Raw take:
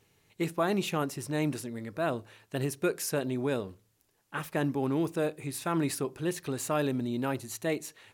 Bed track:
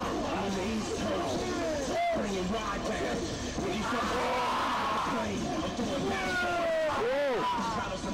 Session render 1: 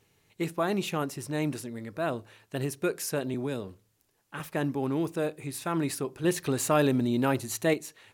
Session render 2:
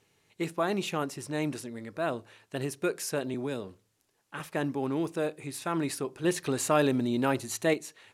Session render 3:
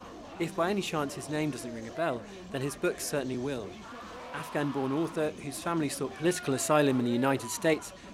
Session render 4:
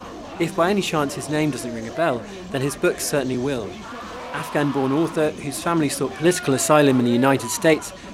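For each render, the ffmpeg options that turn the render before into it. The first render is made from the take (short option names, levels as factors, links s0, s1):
-filter_complex "[0:a]asettb=1/sr,asplit=3[s0][s1][s2];[s0]atrim=end=3.344[s3];[s1]atrim=start=3.34:end=4.4,asetpts=PTS-STARTPTS,afade=t=in:d=0.004:c=qsin,afade=t=out:st=1.056:d=0.004:c=qsin,acrossover=split=330|3000[s4][s5][s6];[s5]acompressor=threshold=0.02:ratio=6:attack=3.2:release=140:knee=2.83:detection=peak[s7];[s4][s7][s6]amix=inputs=3:normalize=0[s8];[s2]atrim=start=4.396[s9];[s3][s8]acrossfade=d=0.004:c1=hsin:c2=qsin[s10];[s10][s9]acrossfade=d=0.004:c1=qsin:c2=hsin,asettb=1/sr,asplit=3[s11][s12][s13];[s11]atrim=end=6.244[s14];[s12]atrim=start=6.24:end=7.74,asetpts=PTS-STARTPTS,afade=t=in:d=0.004:c=qsin,afade=t=out:st=1.496:d=0.004:c=qsin,acontrast=37[s15];[s13]atrim=start=7.736[s16];[s14][s15]acrossfade=d=0.004:c1=hsin:c2=qsin[s17];[s17][s16]acrossfade=d=0.004:c1=qsin:c2=hsin"
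-af "lowpass=11000,lowshelf=f=130:g=-8"
-filter_complex "[1:a]volume=0.211[s0];[0:a][s0]amix=inputs=2:normalize=0"
-af "volume=3.16,alimiter=limit=0.794:level=0:latency=1"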